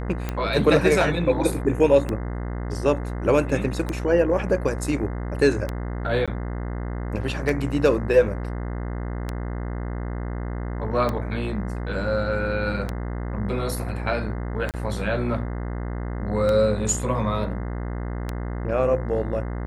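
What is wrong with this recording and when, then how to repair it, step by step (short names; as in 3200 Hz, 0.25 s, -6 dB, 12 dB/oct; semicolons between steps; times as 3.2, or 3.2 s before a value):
buzz 60 Hz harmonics 35 -29 dBFS
tick 33 1/3 rpm -13 dBFS
6.26–6.28 gap 16 ms
14.71–14.74 gap 28 ms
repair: de-click; de-hum 60 Hz, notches 35; interpolate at 6.26, 16 ms; interpolate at 14.71, 28 ms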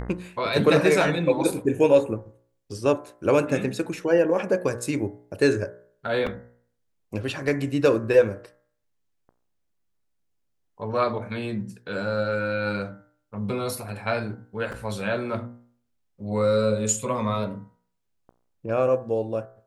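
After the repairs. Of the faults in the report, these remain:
none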